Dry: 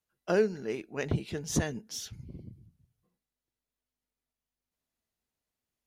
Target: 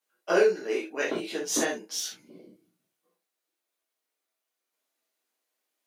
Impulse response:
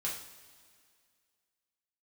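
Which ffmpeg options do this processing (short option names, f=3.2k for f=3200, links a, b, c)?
-filter_complex "[0:a]highpass=f=310:w=0.5412,highpass=f=310:w=1.3066[a];[1:a]atrim=start_sample=2205,afade=t=out:st=0.13:d=0.01,atrim=end_sample=6174[b];[a][b]afir=irnorm=-1:irlink=0,volume=5.5dB"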